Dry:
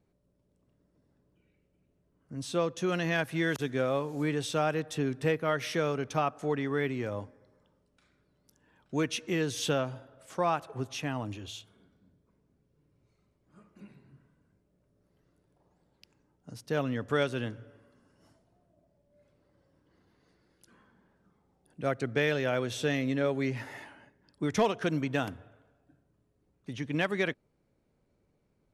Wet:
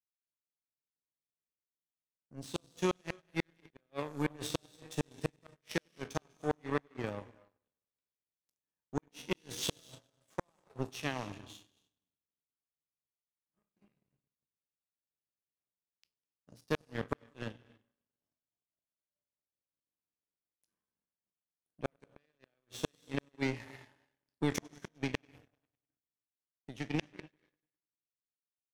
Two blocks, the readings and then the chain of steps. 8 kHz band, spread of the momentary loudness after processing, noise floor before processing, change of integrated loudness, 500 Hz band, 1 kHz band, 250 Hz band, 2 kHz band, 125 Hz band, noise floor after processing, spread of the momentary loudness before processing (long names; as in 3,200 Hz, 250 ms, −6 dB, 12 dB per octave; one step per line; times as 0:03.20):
−4.5 dB, 17 LU, −73 dBFS, −8.0 dB, −10.5 dB, −10.0 dB, −7.5 dB, −9.5 dB, −8.0 dB, below −85 dBFS, 13 LU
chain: peak hold with a decay on every bin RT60 0.38 s
high-pass filter 64 Hz 12 dB per octave
notch filter 1,400 Hz, Q 7.4
hum removal 241.9 Hz, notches 8
gate with flip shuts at −20 dBFS, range −27 dB
echo machine with several playback heads 100 ms, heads first and second, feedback 58%, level −21.5 dB
reverb whose tail is shaped and stops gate 310 ms rising, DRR 11 dB
power curve on the samples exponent 2
level +5.5 dB